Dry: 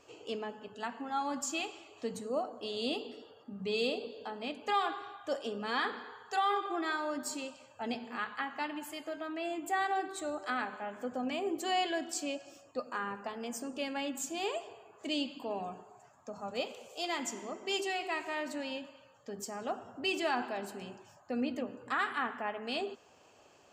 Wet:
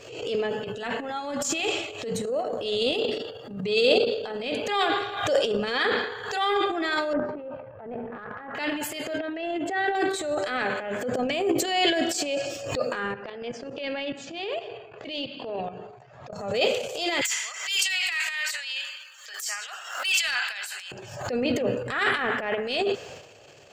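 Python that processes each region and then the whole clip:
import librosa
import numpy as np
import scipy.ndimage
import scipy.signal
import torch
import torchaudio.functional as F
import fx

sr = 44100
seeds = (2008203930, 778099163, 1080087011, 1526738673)

y = fx.chain(x, sr, fx.notch(hz=4600.0, q=14.0),
    fx.over_compress(threshold_db=-36.0, ratio=-0.5), at=(0.64, 3.11))
y = fx.chain(y, sr, fx.lowpass(hz=1400.0, slope=24),
    fx.level_steps(step_db=10),
    fx.transient(attack_db=-10, sustain_db=6), at=(7.13, 8.55))
y = fx.chain(y, sr, fx.air_absorb(metres=180.0),
    fx.notch_comb(f0_hz=1200.0), at=(9.18, 9.95))
y = fx.chain(y, sr, fx.lowpass(hz=4500.0, slope=24),
    fx.hum_notches(base_hz=50, count=6),
    fx.level_steps(step_db=20), at=(13.14, 16.33))
y = fx.chain(y, sr, fx.highpass(hz=1300.0, slope=24),
    fx.high_shelf(hz=4900.0, db=7.5),
    fx.overload_stage(gain_db=29.5), at=(17.21, 20.92))
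y = fx.graphic_eq_10(y, sr, hz=(125, 250, 500, 1000, 2000, 4000), db=(11, -7, 9, -8, 5, 4))
y = fx.transient(y, sr, attack_db=-12, sustain_db=11)
y = fx.pre_swell(y, sr, db_per_s=65.0)
y = y * librosa.db_to_amplitude(7.0)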